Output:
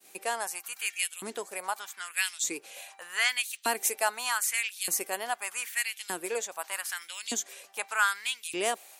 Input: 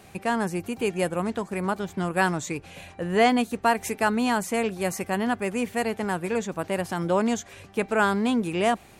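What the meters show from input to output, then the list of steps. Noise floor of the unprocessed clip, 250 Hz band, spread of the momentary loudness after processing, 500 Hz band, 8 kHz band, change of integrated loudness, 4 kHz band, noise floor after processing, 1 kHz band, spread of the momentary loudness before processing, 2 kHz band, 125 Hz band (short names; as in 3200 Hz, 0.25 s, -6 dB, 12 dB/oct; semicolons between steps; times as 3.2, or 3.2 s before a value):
-50 dBFS, -21.0 dB, 9 LU, -12.0 dB, +7.0 dB, -5.0 dB, +2.0 dB, -56 dBFS, -7.5 dB, 7 LU, -1.0 dB, under -25 dB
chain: expander -46 dBFS; LFO high-pass saw up 0.82 Hz 280–3700 Hz; pre-emphasis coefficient 0.9; gain +6.5 dB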